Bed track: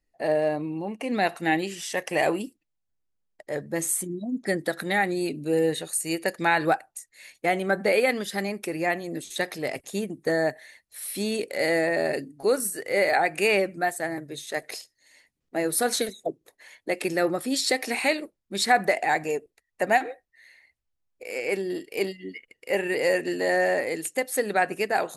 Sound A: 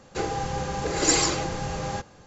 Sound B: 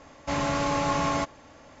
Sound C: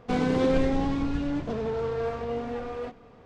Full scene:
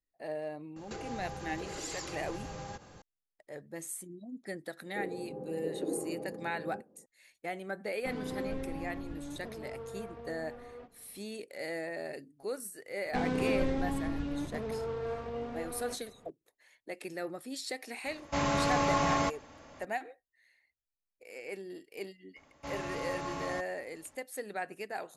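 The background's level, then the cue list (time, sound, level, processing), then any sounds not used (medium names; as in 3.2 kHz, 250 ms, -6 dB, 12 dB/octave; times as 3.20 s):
bed track -14.5 dB
0.76 s: add A -2.5 dB + compression 5:1, threshold -37 dBFS
4.80 s: add A -7 dB + Chebyshev band-pass 210–500 Hz
7.96 s: add C -14 dB + treble shelf 4.5 kHz -9 dB
13.05 s: add C -7 dB
18.05 s: add B -2.5 dB
22.36 s: add B -13 dB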